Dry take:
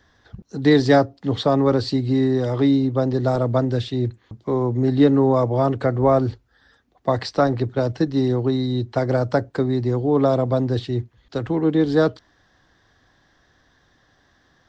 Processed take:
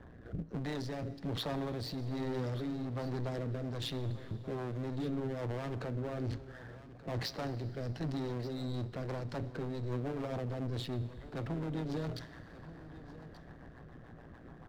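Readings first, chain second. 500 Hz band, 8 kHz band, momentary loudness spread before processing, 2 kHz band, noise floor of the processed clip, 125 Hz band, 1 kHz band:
-20.5 dB, n/a, 8 LU, -16.0 dB, -53 dBFS, -14.5 dB, -19.5 dB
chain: low-pass opened by the level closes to 970 Hz, open at -16 dBFS; bell 160 Hz +8.5 dB 0.3 oct; reverse; compressor 12:1, threshold -26 dBFS, peak gain reduction 18 dB; reverse; limiter -27 dBFS, peak gain reduction 10.5 dB; power-law curve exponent 0.7; AM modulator 120 Hz, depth 60%; soft clip -35 dBFS, distortion -12 dB; rotary speaker horn 1.2 Hz, later 7 Hz, at 8.6; on a send: echo 1.181 s -16 dB; on the sum: Schroeder reverb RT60 3.5 s, combs from 25 ms, DRR 16.5 dB; gain +4.5 dB

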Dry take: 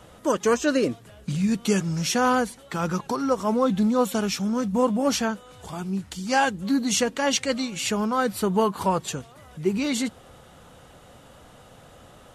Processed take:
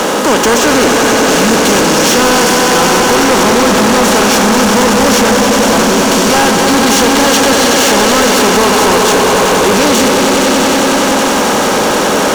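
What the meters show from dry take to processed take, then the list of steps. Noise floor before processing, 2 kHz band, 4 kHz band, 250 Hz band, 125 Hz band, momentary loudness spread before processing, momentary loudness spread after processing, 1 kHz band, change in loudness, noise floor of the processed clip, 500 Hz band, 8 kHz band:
-50 dBFS, +20.0 dB, +20.5 dB, +14.0 dB, +11.0 dB, 9 LU, 2 LU, +18.0 dB, +16.0 dB, -11 dBFS, +17.0 dB, +20.5 dB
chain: per-bin compression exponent 0.4; HPF 210 Hz 24 dB/oct; swelling echo 94 ms, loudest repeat 5, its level -9 dB; sample leveller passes 5; gain -3.5 dB

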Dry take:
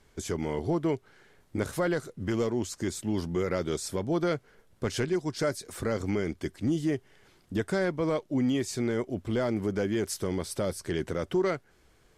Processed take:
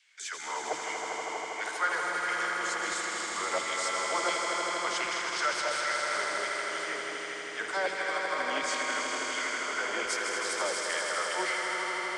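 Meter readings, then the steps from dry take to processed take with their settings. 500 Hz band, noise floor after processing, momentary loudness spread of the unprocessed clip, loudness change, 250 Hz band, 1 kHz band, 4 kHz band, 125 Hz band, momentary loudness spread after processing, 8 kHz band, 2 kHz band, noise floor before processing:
-5.5 dB, -39 dBFS, 6 LU, 0.0 dB, -16.0 dB, +8.5 dB, +8.0 dB, -27.0 dB, 6 LU, +6.0 dB, +10.5 dB, -63 dBFS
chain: regenerating reverse delay 0.103 s, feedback 79%, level -7 dB; steep low-pass 9000 Hz 36 dB/oct; LFO high-pass saw down 1.4 Hz 790–2600 Hz; low shelf 160 Hz +4.5 dB; de-hum 47.82 Hz, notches 8; dispersion lows, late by 70 ms, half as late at 310 Hz; on a send: swelling echo 80 ms, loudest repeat 5, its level -7 dB

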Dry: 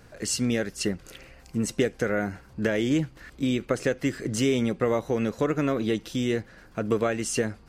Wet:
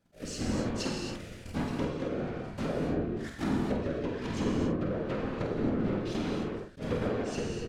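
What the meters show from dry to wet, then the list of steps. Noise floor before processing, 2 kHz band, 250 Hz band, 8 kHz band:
-52 dBFS, -9.0 dB, -5.0 dB, -12.5 dB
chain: half-waves squared off; gate -43 dBFS, range -18 dB; AGC gain up to 5 dB; treble ducked by the level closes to 1200 Hz, closed at -12 dBFS; compressor 2.5:1, threshold -32 dBFS, peak gain reduction 13.5 dB; rotary speaker horn 1.1 Hz; whisperiser; doubler 49 ms -6.5 dB; non-linear reverb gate 0.3 s flat, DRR -1 dB; attack slew limiter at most 270 dB/s; gain -5 dB

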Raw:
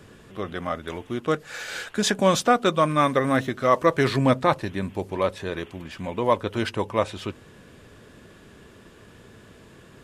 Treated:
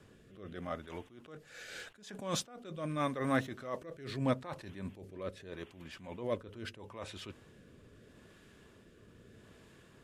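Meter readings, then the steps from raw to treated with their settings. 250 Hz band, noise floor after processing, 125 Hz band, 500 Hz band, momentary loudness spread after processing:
-13.5 dB, -61 dBFS, -13.0 dB, -17.0 dB, 25 LU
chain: rotary speaker horn 0.8 Hz; attack slew limiter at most 100 dB/s; gain -8 dB

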